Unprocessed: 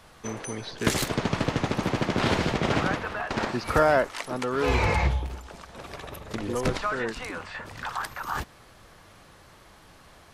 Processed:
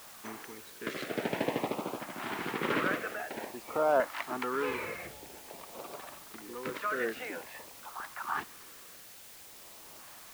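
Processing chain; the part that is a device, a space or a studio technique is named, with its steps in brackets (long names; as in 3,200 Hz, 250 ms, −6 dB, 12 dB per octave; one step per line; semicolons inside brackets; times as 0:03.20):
shortwave radio (band-pass filter 320–2,500 Hz; amplitude tremolo 0.7 Hz, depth 71%; auto-filter notch saw up 0.5 Hz 400–2,000 Hz; white noise bed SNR 15 dB)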